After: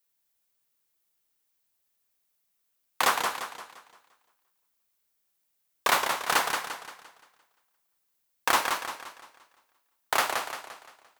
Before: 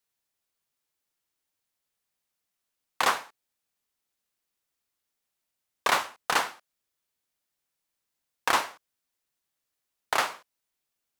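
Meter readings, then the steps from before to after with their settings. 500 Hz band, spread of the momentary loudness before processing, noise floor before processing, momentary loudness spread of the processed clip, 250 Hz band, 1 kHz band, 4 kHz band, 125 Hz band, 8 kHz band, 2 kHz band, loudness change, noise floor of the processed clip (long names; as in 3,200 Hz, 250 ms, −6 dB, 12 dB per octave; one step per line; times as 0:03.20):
+1.5 dB, 8 LU, −84 dBFS, 17 LU, +1.5 dB, +1.5 dB, +2.0 dB, +1.5 dB, +4.0 dB, +1.5 dB, +0.5 dB, −76 dBFS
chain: high-shelf EQ 12,000 Hz +11.5 dB
feedback echo with a swinging delay time 173 ms, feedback 43%, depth 133 cents, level −5.5 dB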